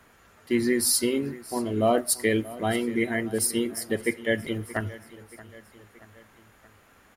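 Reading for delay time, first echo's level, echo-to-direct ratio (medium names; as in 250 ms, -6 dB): 627 ms, -18.5 dB, -17.0 dB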